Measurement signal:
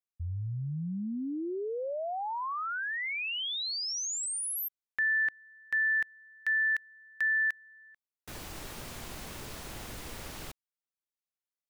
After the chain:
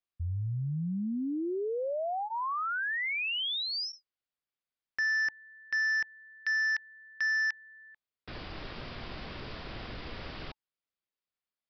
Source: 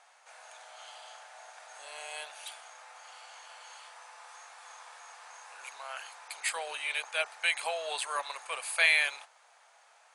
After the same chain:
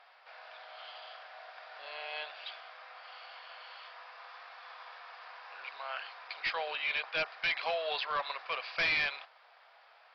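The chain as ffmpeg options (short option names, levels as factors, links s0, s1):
-af "equalizer=f=4200:w=6.8:g=-2.5,bandreject=f=870:w=15,aresample=11025,asoftclip=type=hard:threshold=0.0355,aresample=44100,volume=1.26"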